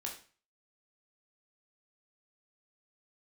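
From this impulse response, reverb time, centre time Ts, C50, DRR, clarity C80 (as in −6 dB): 0.40 s, 22 ms, 8.0 dB, −1.0 dB, 12.5 dB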